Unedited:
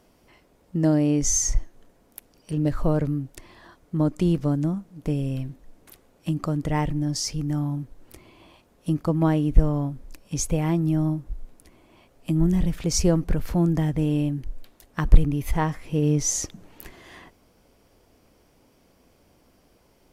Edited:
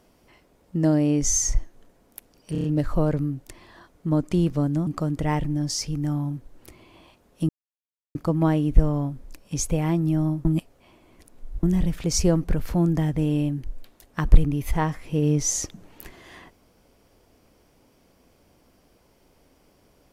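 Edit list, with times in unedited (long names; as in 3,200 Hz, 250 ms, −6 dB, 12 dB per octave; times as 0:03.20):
0:02.52: stutter 0.03 s, 5 plays
0:04.75–0:06.33: remove
0:08.95: splice in silence 0.66 s
0:11.25–0:12.43: reverse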